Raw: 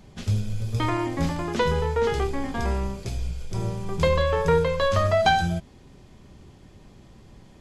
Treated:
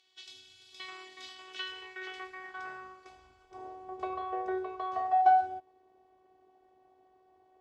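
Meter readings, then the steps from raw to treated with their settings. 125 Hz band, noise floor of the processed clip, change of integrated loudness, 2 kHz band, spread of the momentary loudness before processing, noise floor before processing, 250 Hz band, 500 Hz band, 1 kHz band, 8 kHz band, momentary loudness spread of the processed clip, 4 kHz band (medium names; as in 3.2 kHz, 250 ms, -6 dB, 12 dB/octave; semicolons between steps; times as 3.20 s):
under -40 dB, -67 dBFS, -8.0 dB, -12.0 dB, 10 LU, -50 dBFS, under -15 dB, -17.5 dB, -2.5 dB, under -15 dB, 23 LU, -11.0 dB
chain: robot voice 375 Hz; band-pass sweep 3.5 kHz -> 690 Hz, 1.27–3.96 s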